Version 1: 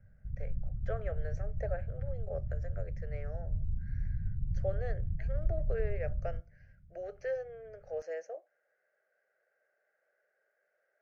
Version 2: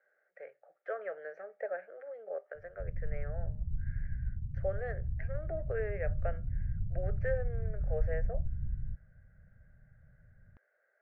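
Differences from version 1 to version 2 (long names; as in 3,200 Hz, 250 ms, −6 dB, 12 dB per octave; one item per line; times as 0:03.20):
background: entry +2.55 s
master: add low-pass with resonance 1,800 Hz, resonance Q 1.7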